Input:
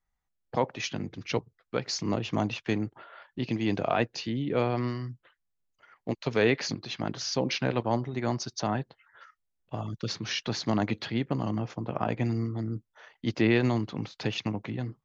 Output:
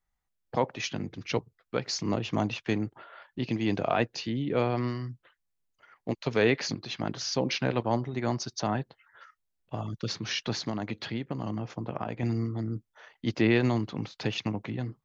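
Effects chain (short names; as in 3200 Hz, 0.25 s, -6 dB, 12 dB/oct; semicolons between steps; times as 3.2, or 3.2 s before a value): 10.55–12.23 compressor, threshold -29 dBFS, peak gain reduction 7.5 dB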